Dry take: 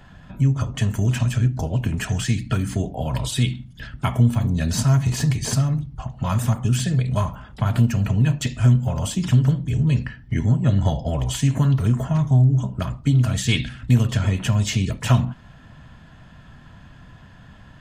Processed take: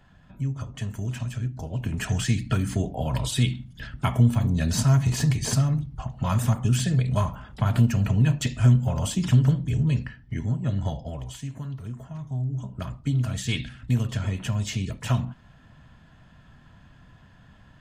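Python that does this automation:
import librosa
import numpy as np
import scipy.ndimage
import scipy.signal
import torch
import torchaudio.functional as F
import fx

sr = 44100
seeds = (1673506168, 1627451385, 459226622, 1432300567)

y = fx.gain(x, sr, db=fx.line((1.6, -10.0), (2.1, -2.0), (9.65, -2.0), (10.38, -8.0), (10.92, -8.0), (11.54, -16.5), (12.18, -16.5), (12.85, -7.0)))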